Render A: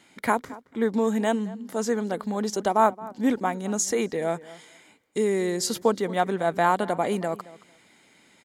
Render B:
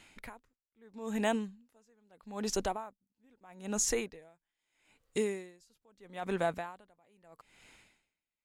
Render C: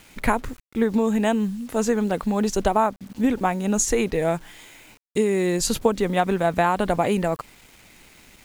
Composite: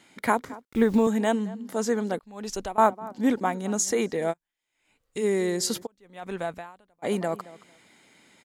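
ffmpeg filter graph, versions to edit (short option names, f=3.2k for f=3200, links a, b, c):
-filter_complex "[1:a]asplit=3[a][b][c];[0:a]asplit=5[d][e][f][g][h];[d]atrim=end=0.652[i];[2:a]atrim=start=0.648:end=1.072[j];[e]atrim=start=1.068:end=2.192[k];[a]atrim=start=2.188:end=2.782[l];[f]atrim=start=2.778:end=4.34[m];[b]atrim=start=4.3:end=5.25[n];[g]atrim=start=5.21:end=5.87[o];[c]atrim=start=5.83:end=7.06[p];[h]atrim=start=7.02[q];[i][j]acrossfade=d=0.004:c1=hsin:c2=hsin[r];[r][k]acrossfade=d=0.004:c1=hsin:c2=hsin[s];[s][l]acrossfade=d=0.004:c1=hsin:c2=hsin[t];[t][m]acrossfade=d=0.004:c1=hsin:c2=hsin[u];[u][n]acrossfade=d=0.04:c1=tri:c2=tri[v];[v][o]acrossfade=d=0.04:c1=tri:c2=tri[w];[w][p]acrossfade=d=0.04:c1=tri:c2=tri[x];[x][q]acrossfade=d=0.04:c1=tri:c2=tri"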